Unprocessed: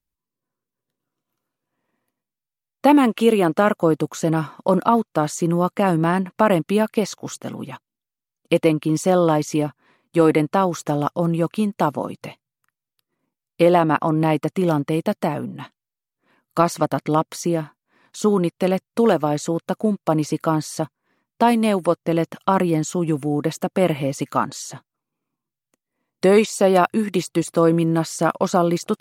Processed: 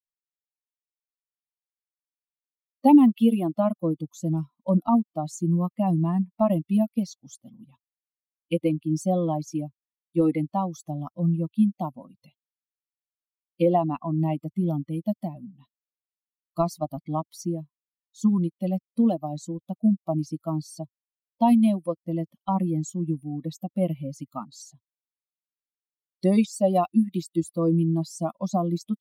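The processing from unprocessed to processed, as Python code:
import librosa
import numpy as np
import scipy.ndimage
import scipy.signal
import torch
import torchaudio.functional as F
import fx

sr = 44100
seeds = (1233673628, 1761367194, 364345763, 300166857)

y = fx.bin_expand(x, sr, power=2.0)
y = fx.low_shelf(y, sr, hz=460.0, db=11.0)
y = fx.fixed_phaser(y, sr, hz=420.0, stages=6)
y = F.gain(torch.from_numpy(y), -4.5).numpy()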